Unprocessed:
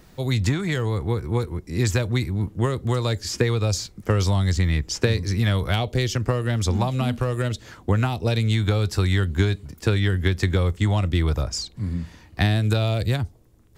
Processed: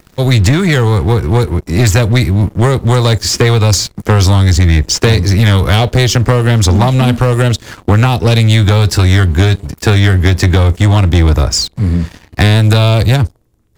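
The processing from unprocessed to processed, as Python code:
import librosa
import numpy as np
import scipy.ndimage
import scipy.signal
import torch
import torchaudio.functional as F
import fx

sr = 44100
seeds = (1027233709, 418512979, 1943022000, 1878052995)

y = fx.leveller(x, sr, passes=3)
y = y * 10.0 ** (4.5 / 20.0)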